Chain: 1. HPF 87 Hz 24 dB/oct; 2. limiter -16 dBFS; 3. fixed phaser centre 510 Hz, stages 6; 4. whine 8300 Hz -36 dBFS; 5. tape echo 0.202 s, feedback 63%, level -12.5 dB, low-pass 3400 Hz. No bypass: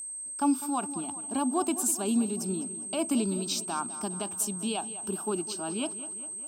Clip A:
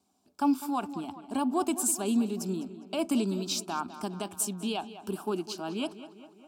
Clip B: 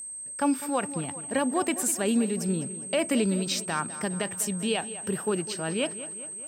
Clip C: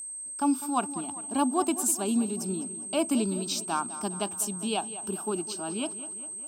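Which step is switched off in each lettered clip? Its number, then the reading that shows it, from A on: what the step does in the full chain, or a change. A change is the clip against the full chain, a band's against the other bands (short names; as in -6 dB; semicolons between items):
4, 8 kHz band -5.0 dB; 3, 2 kHz band +7.5 dB; 2, crest factor change +1.5 dB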